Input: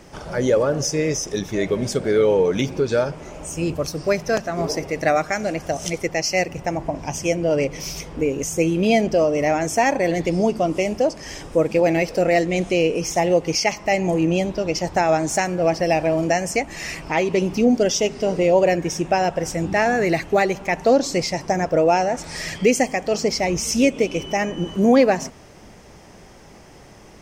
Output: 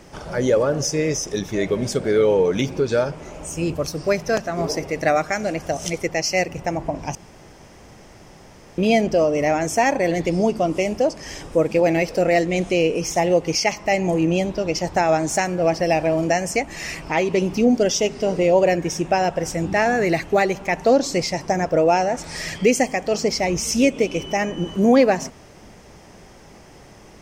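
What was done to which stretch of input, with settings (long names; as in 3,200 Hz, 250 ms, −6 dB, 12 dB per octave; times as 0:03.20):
0:07.15–0:08.78: fill with room tone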